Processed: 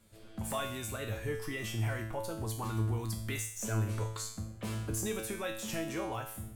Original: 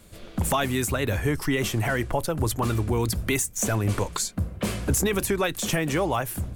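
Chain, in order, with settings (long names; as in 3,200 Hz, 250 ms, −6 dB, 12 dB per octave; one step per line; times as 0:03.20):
tuned comb filter 110 Hz, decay 0.62 s, harmonics all, mix 90%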